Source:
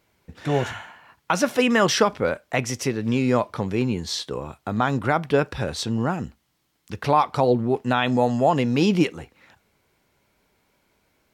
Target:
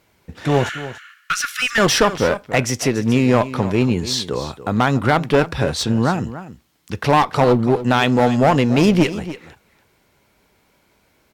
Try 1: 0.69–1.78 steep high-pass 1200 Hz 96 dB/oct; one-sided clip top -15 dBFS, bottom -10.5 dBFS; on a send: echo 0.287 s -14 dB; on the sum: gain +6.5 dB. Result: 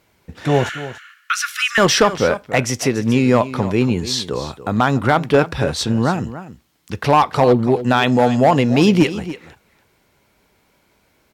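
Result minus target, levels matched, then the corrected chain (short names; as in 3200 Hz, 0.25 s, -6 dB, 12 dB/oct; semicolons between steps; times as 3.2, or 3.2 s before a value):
one-sided clip: distortion -6 dB
0.69–1.78 steep high-pass 1200 Hz 96 dB/oct; one-sided clip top -22.5 dBFS, bottom -10.5 dBFS; on a send: echo 0.287 s -14 dB; on the sum: gain +6.5 dB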